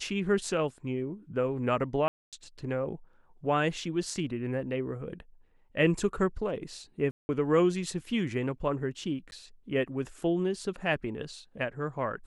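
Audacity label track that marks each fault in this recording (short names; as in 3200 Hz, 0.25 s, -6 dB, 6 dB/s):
2.080000	2.330000	gap 0.247 s
7.110000	7.290000	gap 0.18 s
9.310000	9.320000	gap 11 ms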